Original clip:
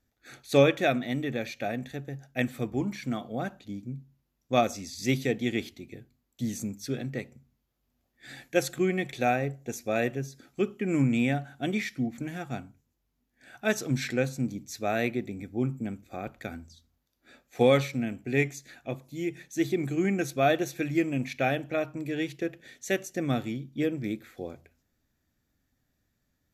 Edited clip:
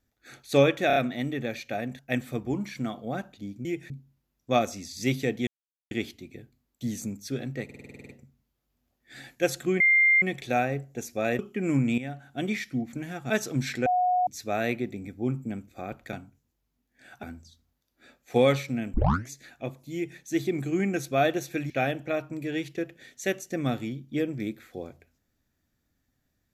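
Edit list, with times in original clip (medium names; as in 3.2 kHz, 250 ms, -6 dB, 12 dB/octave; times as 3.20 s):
0.87 s: stutter 0.03 s, 4 plays
1.90–2.26 s: delete
5.49 s: insert silence 0.44 s
7.22 s: stutter 0.05 s, 10 plays
8.93 s: add tone 2.1 kHz -16.5 dBFS 0.42 s
10.10–10.64 s: delete
11.23–11.71 s: fade in, from -12.5 dB
12.55–13.65 s: move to 16.48 s
14.21–14.62 s: bleep 727 Hz -20.5 dBFS
18.19 s: tape start 0.35 s
19.19–19.44 s: copy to 3.92 s
20.95–21.34 s: delete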